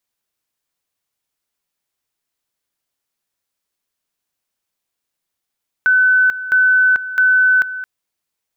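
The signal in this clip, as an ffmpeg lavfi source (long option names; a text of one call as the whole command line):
ffmpeg -f lavfi -i "aevalsrc='pow(10,(-9-14*gte(mod(t,0.66),0.44))/20)*sin(2*PI*1510*t)':duration=1.98:sample_rate=44100" out.wav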